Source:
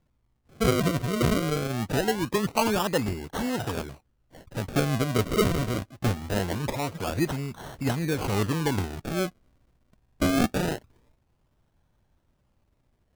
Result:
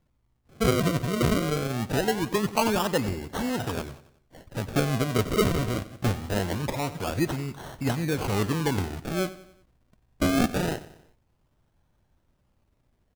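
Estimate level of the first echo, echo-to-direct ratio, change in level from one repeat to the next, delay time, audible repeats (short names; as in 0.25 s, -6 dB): -16.0 dB, -15.0 dB, -6.5 dB, 92 ms, 3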